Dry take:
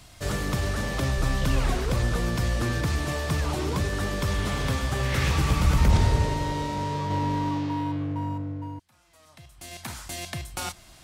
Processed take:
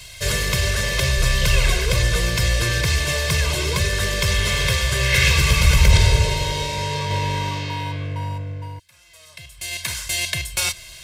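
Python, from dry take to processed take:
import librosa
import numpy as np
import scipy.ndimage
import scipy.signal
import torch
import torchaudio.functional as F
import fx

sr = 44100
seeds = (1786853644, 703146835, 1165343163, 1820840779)

y = fx.high_shelf_res(x, sr, hz=1600.0, db=8.5, q=1.5)
y = fx.dmg_noise_colour(y, sr, seeds[0], colour='pink', level_db=-66.0, at=(9.81, 10.37), fade=0.02)
y = y + 0.98 * np.pad(y, (int(1.9 * sr / 1000.0), 0))[:len(y)]
y = y * librosa.db_to_amplitude(1.0)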